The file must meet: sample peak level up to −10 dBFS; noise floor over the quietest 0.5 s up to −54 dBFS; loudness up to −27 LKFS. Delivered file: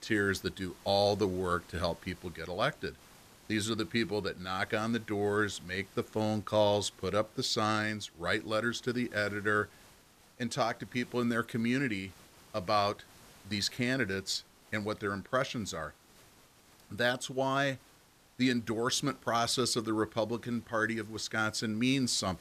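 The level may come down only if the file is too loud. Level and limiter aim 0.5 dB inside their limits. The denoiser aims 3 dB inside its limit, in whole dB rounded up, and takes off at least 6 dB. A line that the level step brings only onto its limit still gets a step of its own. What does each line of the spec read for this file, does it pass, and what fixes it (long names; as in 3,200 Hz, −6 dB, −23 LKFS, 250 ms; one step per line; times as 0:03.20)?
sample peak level −16.0 dBFS: in spec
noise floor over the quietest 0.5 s −62 dBFS: in spec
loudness −32.5 LKFS: in spec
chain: no processing needed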